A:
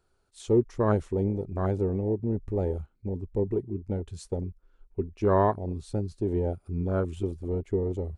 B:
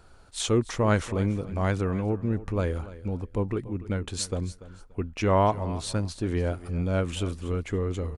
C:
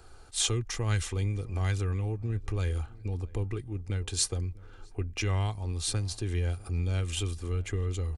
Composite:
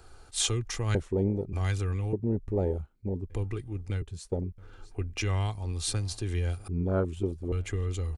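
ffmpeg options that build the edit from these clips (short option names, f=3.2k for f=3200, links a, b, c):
-filter_complex "[0:a]asplit=4[a][b][c][d];[2:a]asplit=5[e][f][g][h][i];[e]atrim=end=0.952[j];[a]atrim=start=0.948:end=1.532[k];[f]atrim=start=1.528:end=2.132[l];[b]atrim=start=2.128:end=3.302[m];[g]atrim=start=3.298:end=4.022[n];[c]atrim=start=4.018:end=4.582[o];[h]atrim=start=4.578:end=6.682[p];[d]atrim=start=6.678:end=7.522[q];[i]atrim=start=7.518[r];[j][k]acrossfade=d=0.004:c1=hsin:c2=hsin[s];[s][l]acrossfade=d=0.004:c1=hsin:c2=hsin[t];[t][m]acrossfade=d=0.004:c1=hsin:c2=hsin[u];[u][n]acrossfade=d=0.004:c1=hsin:c2=hsin[v];[v][o]acrossfade=d=0.004:c1=hsin:c2=hsin[w];[w][p]acrossfade=d=0.004:c1=hsin:c2=hsin[x];[x][q]acrossfade=d=0.004:c1=hsin:c2=hsin[y];[y][r]acrossfade=d=0.004:c1=hsin:c2=hsin"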